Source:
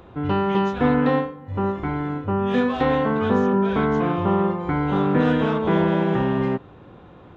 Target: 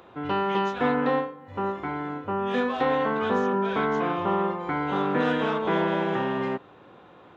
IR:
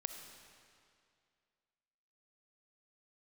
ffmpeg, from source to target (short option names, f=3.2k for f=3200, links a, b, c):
-filter_complex "[0:a]highpass=f=530:p=1,asplit=3[a][b][c];[a]afade=t=out:st=0.91:d=0.02[d];[b]adynamicequalizer=threshold=0.0126:dfrequency=1500:dqfactor=0.7:tfrequency=1500:tqfactor=0.7:attack=5:release=100:ratio=0.375:range=2:mode=cutabove:tftype=highshelf,afade=t=in:st=0.91:d=0.02,afade=t=out:st=2.99:d=0.02[e];[c]afade=t=in:st=2.99:d=0.02[f];[d][e][f]amix=inputs=3:normalize=0"